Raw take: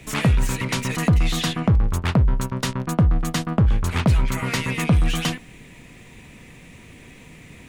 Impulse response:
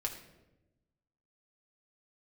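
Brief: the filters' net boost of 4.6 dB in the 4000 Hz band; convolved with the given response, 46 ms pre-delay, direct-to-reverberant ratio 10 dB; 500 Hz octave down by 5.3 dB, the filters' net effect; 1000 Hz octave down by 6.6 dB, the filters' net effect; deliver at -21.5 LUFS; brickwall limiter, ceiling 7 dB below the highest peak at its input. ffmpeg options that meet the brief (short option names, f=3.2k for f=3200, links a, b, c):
-filter_complex "[0:a]equalizer=f=500:t=o:g=-5,equalizer=f=1k:t=o:g=-7.5,equalizer=f=4k:t=o:g=6.5,alimiter=limit=-16dB:level=0:latency=1,asplit=2[a][b];[1:a]atrim=start_sample=2205,adelay=46[c];[b][c]afir=irnorm=-1:irlink=0,volume=-11.5dB[d];[a][d]amix=inputs=2:normalize=0,volume=3dB"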